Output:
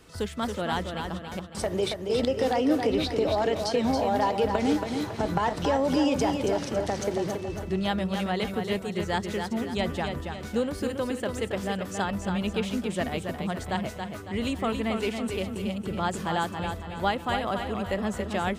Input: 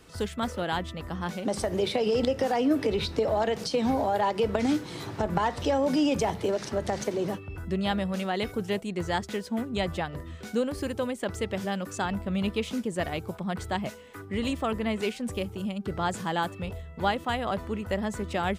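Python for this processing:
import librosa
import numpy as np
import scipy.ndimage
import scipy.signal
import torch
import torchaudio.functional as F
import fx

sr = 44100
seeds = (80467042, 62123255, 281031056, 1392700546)

y = fx.step_gate(x, sr, bpm=194, pattern='xxx...x..xx', floor_db=-60.0, edge_ms=4.5, at=(1.18, 2.09), fade=0.02)
y = fx.echo_feedback(y, sr, ms=277, feedback_pct=44, wet_db=-6.0)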